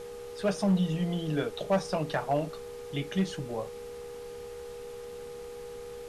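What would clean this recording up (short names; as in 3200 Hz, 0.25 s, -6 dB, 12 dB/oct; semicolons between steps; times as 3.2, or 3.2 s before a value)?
clip repair -19.5 dBFS; de-hum 409.8 Hz, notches 3; notch 480 Hz, Q 30; denoiser 30 dB, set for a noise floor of -42 dBFS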